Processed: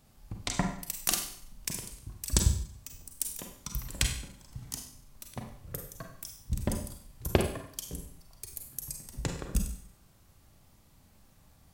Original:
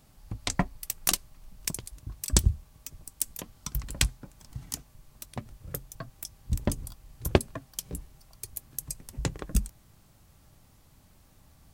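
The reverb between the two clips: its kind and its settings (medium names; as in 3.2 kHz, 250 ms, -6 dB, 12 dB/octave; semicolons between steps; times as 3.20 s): Schroeder reverb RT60 0.6 s, combs from 32 ms, DRR 3 dB; trim -3.5 dB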